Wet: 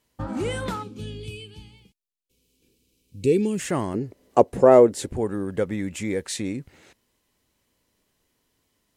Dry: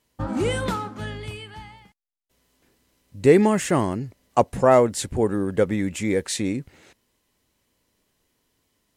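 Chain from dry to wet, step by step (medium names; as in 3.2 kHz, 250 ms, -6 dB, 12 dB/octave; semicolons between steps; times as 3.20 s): 0.83–3.59 s: time-frequency box 520–2200 Hz -18 dB; 3.94–5.13 s: peaking EQ 400 Hz +12.5 dB 1.5 oct; in parallel at -2 dB: compression, threshold -30 dBFS, peak gain reduction 24 dB; on the sum: trim -6 dB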